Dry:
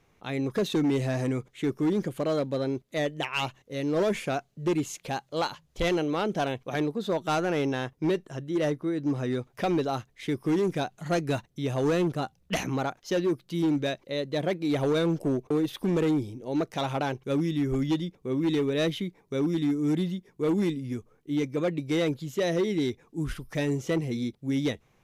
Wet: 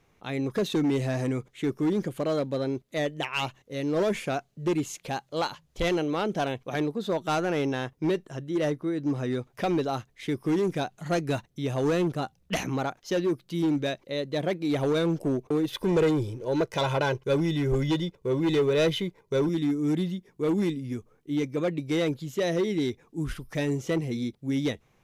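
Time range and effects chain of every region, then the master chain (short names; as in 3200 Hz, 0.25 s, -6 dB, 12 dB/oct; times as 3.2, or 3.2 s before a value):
15.72–19.49 high shelf 9000 Hz -4 dB + comb 2 ms, depth 62% + sample leveller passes 1
whole clip: dry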